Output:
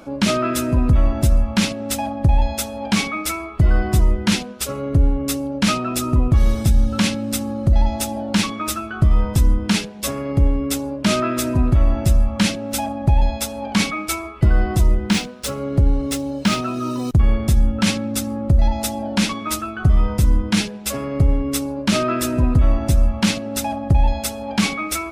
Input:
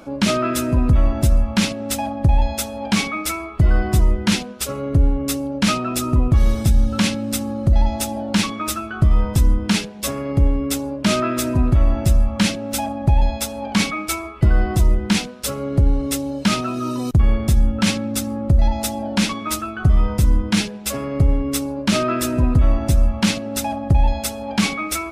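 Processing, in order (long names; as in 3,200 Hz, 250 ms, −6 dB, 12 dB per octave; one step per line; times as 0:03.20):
0:14.91–0:17.11: running median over 3 samples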